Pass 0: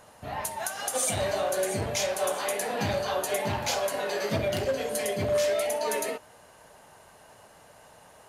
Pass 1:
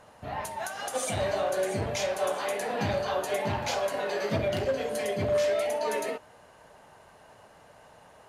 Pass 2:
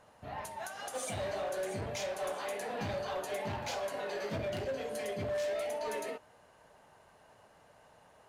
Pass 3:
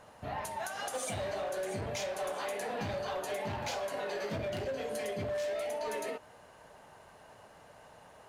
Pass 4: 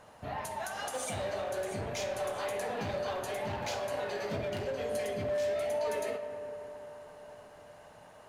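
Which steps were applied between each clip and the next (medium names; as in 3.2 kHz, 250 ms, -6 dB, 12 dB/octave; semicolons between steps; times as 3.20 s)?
low-pass 3.6 kHz 6 dB/octave
hard clipper -24.5 dBFS, distortion -16 dB; trim -7 dB
compression, threshold -39 dBFS, peak gain reduction 6 dB; trim +5.5 dB
reverberation RT60 4.4 s, pre-delay 10 ms, DRR 8.5 dB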